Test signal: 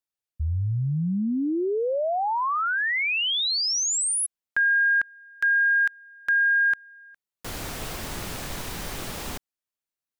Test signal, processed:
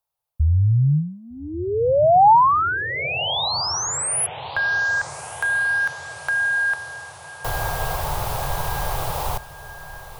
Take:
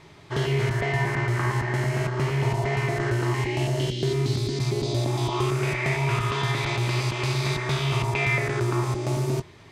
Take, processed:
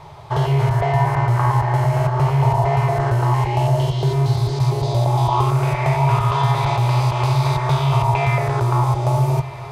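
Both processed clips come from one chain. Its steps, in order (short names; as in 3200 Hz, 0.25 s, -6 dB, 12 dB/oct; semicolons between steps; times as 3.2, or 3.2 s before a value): in parallel at -1 dB: compressor, threshold -32 dBFS; on the sum: EQ curve 150 Hz 0 dB, 210 Hz -26 dB, 470 Hz -3 dB, 870 Hz +6 dB, 1800 Hz -11 dB, 3600 Hz -8 dB, 7500 Hz -10 dB, 12000 Hz -3 dB; diffused feedback echo 1.227 s, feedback 61%, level -15.5 dB; gain +6 dB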